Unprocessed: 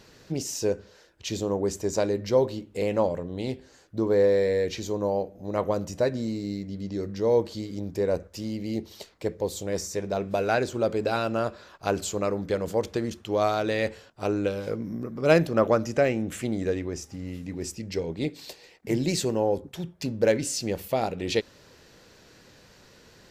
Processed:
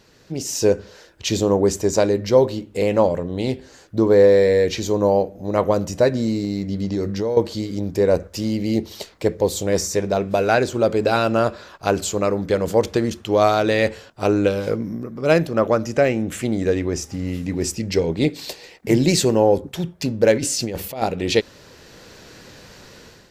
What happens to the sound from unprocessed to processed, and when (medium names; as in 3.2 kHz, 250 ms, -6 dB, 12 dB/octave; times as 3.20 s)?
6.44–7.37 s: compression, threshold -28 dBFS
20.37–21.02 s: compressor with a negative ratio -32 dBFS
whole clip: level rider gain up to 11.5 dB; trim -1 dB